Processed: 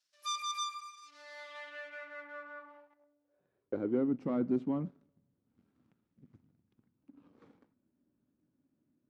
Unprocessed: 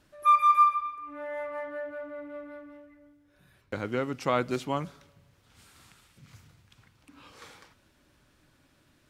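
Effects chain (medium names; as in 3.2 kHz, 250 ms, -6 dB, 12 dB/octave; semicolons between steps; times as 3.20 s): partial rectifier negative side -3 dB; waveshaping leveller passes 2; band-pass sweep 5.4 kHz -> 240 Hz, 1.11–4.14 s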